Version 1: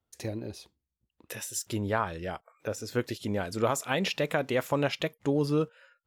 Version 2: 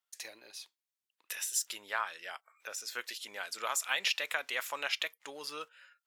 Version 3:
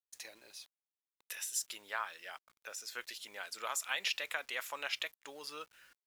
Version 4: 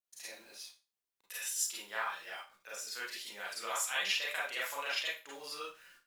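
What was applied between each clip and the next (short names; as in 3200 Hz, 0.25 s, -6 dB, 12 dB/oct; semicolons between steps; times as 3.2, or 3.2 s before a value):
HPF 1500 Hz 12 dB/oct; gain +2 dB
bit-crush 10-bit; gain -4 dB
Schroeder reverb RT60 0.31 s, combs from 32 ms, DRR -7 dB; gain -5 dB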